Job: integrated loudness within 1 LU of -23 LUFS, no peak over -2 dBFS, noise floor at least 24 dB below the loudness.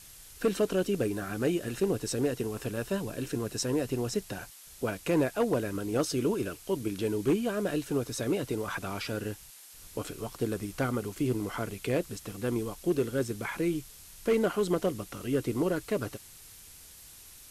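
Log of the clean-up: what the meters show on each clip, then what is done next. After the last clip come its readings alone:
clipped 0.4%; flat tops at -19.5 dBFS; noise floor -51 dBFS; noise floor target -56 dBFS; loudness -31.5 LUFS; peak -19.5 dBFS; loudness target -23.0 LUFS
-> clip repair -19.5 dBFS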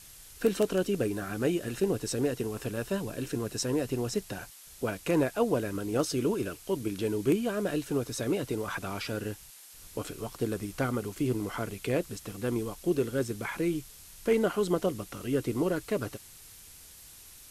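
clipped 0.0%; noise floor -51 dBFS; noise floor target -56 dBFS
-> noise print and reduce 6 dB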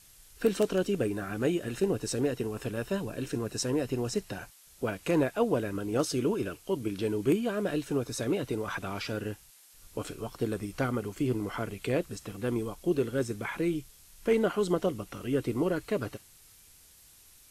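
noise floor -57 dBFS; loudness -31.5 LUFS; peak -11.5 dBFS; loudness target -23.0 LUFS
-> gain +8.5 dB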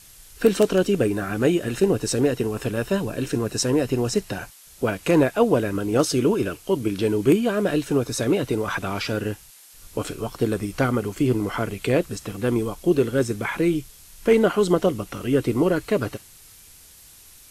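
loudness -23.0 LUFS; peak -3.0 dBFS; noise floor -49 dBFS

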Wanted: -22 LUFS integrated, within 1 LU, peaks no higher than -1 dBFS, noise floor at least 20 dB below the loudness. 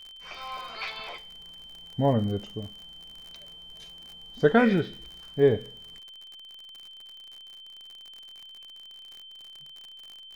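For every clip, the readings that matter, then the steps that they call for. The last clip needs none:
ticks 52/s; steady tone 3100 Hz; tone level -44 dBFS; loudness -27.0 LUFS; peak -7.5 dBFS; loudness target -22.0 LUFS
-> de-click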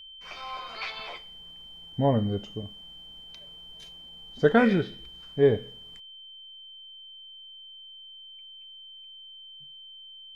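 ticks 0/s; steady tone 3100 Hz; tone level -44 dBFS
-> notch 3100 Hz, Q 30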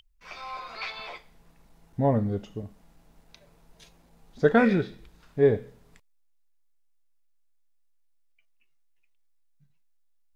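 steady tone none; loudness -26.0 LUFS; peak -7.5 dBFS; loudness target -22.0 LUFS
-> gain +4 dB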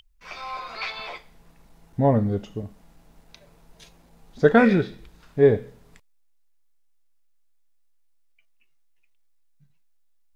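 loudness -22.0 LUFS; peak -3.5 dBFS; noise floor -60 dBFS

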